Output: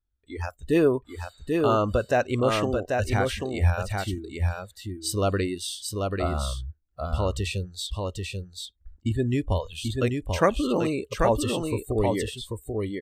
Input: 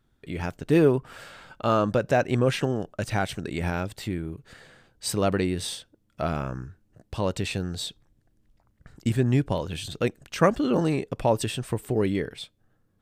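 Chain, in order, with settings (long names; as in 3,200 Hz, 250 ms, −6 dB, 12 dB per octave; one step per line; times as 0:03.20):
0:07.87–0:09.20: low-pass filter 3,300 Hz 6 dB per octave
noise reduction from a noise print of the clip's start 23 dB
low shelf with overshoot 100 Hz +11 dB, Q 3
single-tap delay 788 ms −4 dB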